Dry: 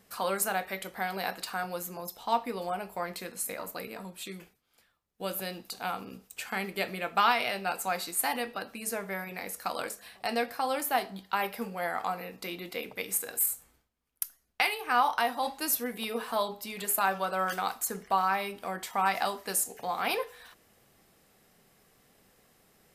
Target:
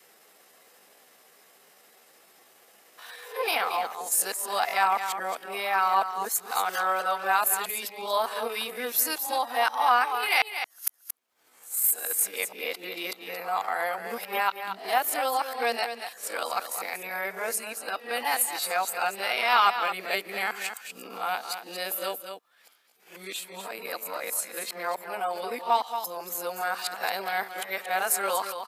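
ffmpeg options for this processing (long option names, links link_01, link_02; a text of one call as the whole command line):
ffmpeg -i in.wav -filter_complex "[0:a]areverse,adynamicequalizer=threshold=0.00562:dfrequency=600:dqfactor=4.2:tfrequency=600:tqfactor=4.2:attack=5:release=100:ratio=0.375:range=2:mode=cutabove:tftype=bell,aecho=1:1:181:0.335,atempo=0.8,highpass=470,asplit=2[link_01][link_02];[link_02]acompressor=threshold=-44dB:ratio=6,volume=-2dB[link_03];[link_01][link_03]amix=inputs=2:normalize=0,volume=3dB" out.wav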